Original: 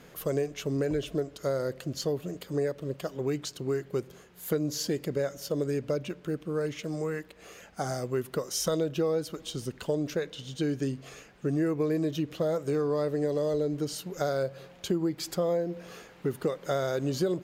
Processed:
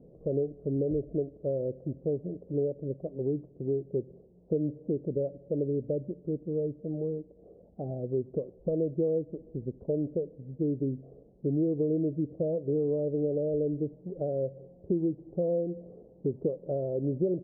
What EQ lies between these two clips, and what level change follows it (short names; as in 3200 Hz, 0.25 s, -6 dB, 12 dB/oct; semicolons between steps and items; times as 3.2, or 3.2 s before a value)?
steep low-pass 590 Hz 36 dB/oct; 0.0 dB